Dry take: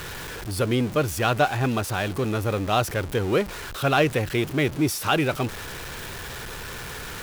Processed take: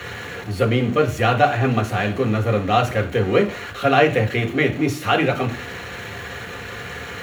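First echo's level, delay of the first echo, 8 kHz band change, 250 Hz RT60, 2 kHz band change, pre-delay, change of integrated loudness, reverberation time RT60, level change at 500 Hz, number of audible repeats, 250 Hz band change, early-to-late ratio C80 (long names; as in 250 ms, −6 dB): no echo audible, no echo audible, −5.5 dB, 0.45 s, +5.0 dB, 3 ms, +5.5 dB, 0.45 s, +5.5 dB, no echo audible, +3.5 dB, 18.0 dB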